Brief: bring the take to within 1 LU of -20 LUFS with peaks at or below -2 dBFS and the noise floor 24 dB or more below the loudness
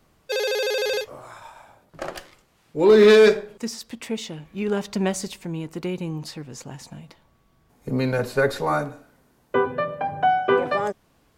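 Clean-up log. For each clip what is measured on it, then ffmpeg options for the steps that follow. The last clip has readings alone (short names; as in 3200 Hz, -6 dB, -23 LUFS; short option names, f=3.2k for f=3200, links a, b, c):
loudness -22.0 LUFS; peak -7.0 dBFS; loudness target -20.0 LUFS
-> -af "volume=2dB"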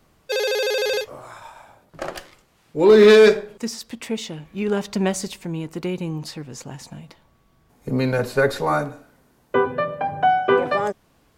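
loudness -20.0 LUFS; peak -5.0 dBFS; noise floor -60 dBFS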